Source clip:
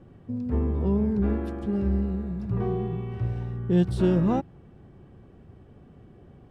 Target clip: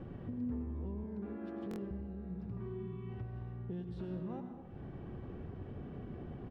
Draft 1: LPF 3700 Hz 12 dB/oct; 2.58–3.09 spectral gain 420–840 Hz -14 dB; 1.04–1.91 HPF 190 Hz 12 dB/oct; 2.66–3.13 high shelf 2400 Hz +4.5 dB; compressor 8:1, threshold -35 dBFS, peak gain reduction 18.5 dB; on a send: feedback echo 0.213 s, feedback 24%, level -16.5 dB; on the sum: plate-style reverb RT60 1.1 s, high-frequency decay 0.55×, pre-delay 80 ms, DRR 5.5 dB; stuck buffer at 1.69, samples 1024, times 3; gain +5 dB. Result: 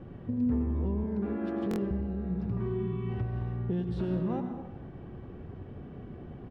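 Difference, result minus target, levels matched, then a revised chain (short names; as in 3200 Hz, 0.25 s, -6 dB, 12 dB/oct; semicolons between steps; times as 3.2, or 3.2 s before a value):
compressor: peak gain reduction -10.5 dB
LPF 3700 Hz 12 dB/oct; 2.58–3.09 spectral gain 420–840 Hz -14 dB; 1.04–1.91 HPF 190 Hz 12 dB/oct; 2.66–3.13 high shelf 2400 Hz +4.5 dB; compressor 8:1, threshold -47 dBFS, peak gain reduction 29 dB; on a send: feedback echo 0.213 s, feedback 24%, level -16.5 dB; on the sum: plate-style reverb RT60 1.1 s, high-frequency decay 0.55×, pre-delay 80 ms, DRR 5.5 dB; stuck buffer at 1.69, samples 1024, times 3; gain +5 dB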